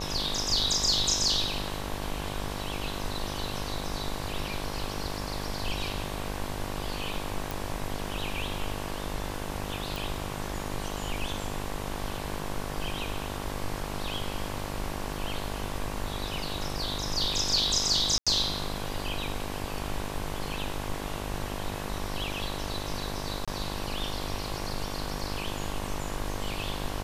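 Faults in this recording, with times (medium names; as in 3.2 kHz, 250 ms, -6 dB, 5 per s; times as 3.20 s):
buzz 50 Hz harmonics 23 -37 dBFS
7.51 s: pop
9.96 s: pop
18.18–18.27 s: dropout 86 ms
23.45–23.48 s: dropout 26 ms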